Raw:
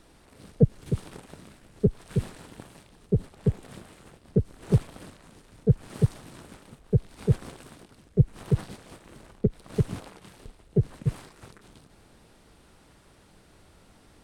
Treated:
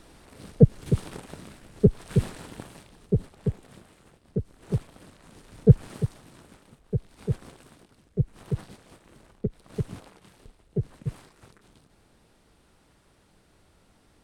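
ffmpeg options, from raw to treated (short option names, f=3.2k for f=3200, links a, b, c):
-af "volume=15.5dB,afade=t=out:st=2.56:d=1.12:silence=0.334965,afade=t=in:st=5.06:d=0.66:silence=0.266073,afade=t=out:st=5.72:d=0.3:silence=0.281838"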